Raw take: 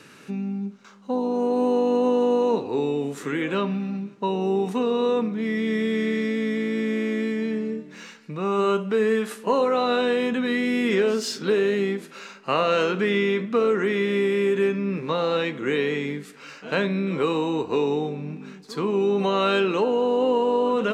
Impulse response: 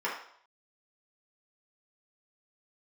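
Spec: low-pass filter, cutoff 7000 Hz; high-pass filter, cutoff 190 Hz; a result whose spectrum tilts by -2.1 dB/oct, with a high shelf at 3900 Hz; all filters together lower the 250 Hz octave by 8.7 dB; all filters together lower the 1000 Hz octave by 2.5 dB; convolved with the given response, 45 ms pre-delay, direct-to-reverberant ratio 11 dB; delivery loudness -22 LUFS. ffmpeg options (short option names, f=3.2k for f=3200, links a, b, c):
-filter_complex "[0:a]highpass=190,lowpass=7k,equalizer=f=250:t=o:g=-9,equalizer=f=1k:t=o:g=-3,highshelf=f=3.9k:g=4.5,asplit=2[a][b];[1:a]atrim=start_sample=2205,adelay=45[c];[b][c]afir=irnorm=-1:irlink=0,volume=-20dB[d];[a][d]amix=inputs=2:normalize=0,volume=4.5dB"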